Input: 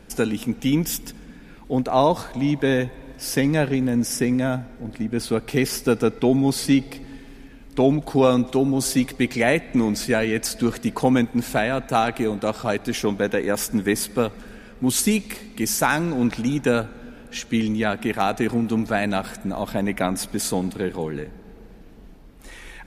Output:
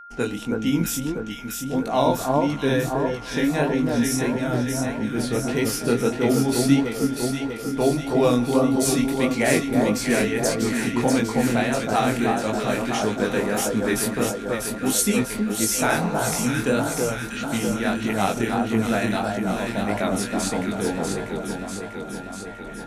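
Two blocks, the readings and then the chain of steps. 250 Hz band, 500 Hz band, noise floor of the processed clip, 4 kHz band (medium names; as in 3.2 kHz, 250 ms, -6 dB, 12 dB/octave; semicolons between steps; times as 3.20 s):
0.0 dB, 0.0 dB, -34 dBFS, +0.5 dB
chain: band-stop 4.9 kHz, Q 15; gate -40 dBFS, range -37 dB; level-controlled noise filter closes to 1.7 kHz, open at -18.5 dBFS; spectral replace 15.88–16.29 s, 230–1300 Hz both; treble shelf 5.1 kHz +6 dB; on a send: echo whose repeats swap between lows and highs 322 ms, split 1.4 kHz, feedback 80%, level -2.5 dB; on the sum: chorus 1.6 Hz, delay 18 ms, depth 7.6 ms; whistle 1.4 kHz -40 dBFS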